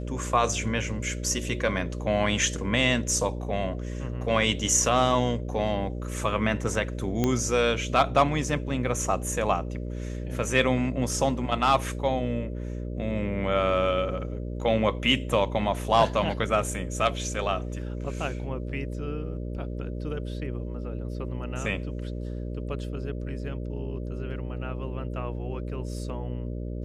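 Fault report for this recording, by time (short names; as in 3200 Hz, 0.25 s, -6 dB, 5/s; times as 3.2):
buzz 60 Hz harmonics 10 -33 dBFS
7.24 pop -11 dBFS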